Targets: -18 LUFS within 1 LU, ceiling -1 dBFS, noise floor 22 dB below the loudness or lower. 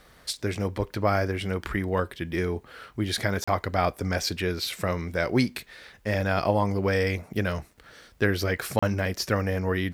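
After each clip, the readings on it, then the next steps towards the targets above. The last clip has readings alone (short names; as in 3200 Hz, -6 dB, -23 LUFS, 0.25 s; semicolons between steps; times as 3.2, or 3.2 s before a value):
dropouts 2; longest dropout 35 ms; loudness -27.5 LUFS; peak -8.0 dBFS; loudness target -18.0 LUFS
-> interpolate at 3.44/8.79, 35 ms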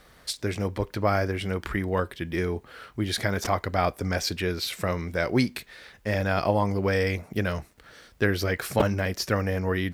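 dropouts 0; loudness -27.5 LUFS; peak -8.0 dBFS; loudness target -18.0 LUFS
-> gain +9.5 dB; limiter -1 dBFS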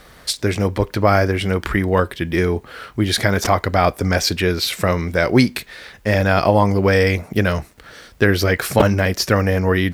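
loudness -18.0 LUFS; peak -1.0 dBFS; noise floor -46 dBFS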